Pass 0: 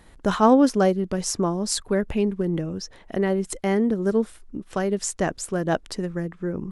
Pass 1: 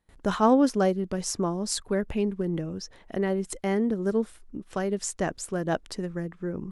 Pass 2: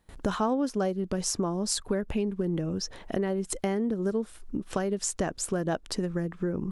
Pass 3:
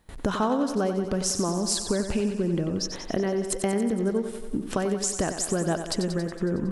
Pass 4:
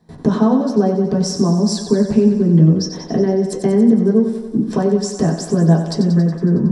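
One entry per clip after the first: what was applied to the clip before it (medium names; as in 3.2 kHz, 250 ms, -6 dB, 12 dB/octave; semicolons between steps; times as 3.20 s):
gate with hold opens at -42 dBFS; trim -4 dB
compression 4:1, threshold -35 dBFS, peak gain reduction 16.5 dB; peaking EQ 2 kHz -3 dB 0.32 oct; trim +8 dB
compression 1.5:1, threshold -33 dBFS, peak gain reduction 4 dB; thinning echo 92 ms, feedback 68%, high-pass 150 Hz, level -8.5 dB; trim +5.5 dB
reverberation RT60 0.20 s, pre-delay 3 ms, DRR -3.5 dB; trim -8.5 dB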